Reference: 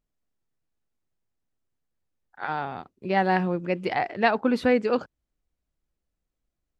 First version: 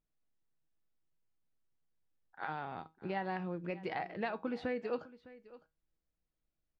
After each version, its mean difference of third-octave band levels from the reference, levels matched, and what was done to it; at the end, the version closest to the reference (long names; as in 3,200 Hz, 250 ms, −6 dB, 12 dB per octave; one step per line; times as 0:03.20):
3.0 dB: low-pass filter 4,700 Hz 12 dB per octave
downward compressor 3 to 1, threshold −31 dBFS, peak gain reduction 11.5 dB
tuned comb filter 160 Hz, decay 0.22 s, harmonics all, mix 60%
single-tap delay 607 ms −18.5 dB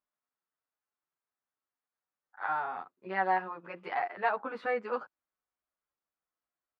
5.5 dB: harmonic and percussive parts rebalanced percussive −5 dB
in parallel at +2.5 dB: downward compressor, threshold −29 dBFS, peak gain reduction 12.5 dB
on the sum: resonant band-pass 1,200 Hz, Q 1.7
barber-pole flanger 9.7 ms +0.79 Hz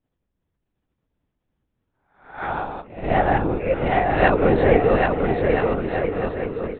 9.0 dB: peak hold with a rise ahead of every peak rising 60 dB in 0.51 s
linear-prediction vocoder at 8 kHz whisper
parametric band 380 Hz +7 dB 2.6 octaves
on a send: bouncing-ball delay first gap 780 ms, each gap 0.7×, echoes 5
on the sum: level −1 dB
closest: first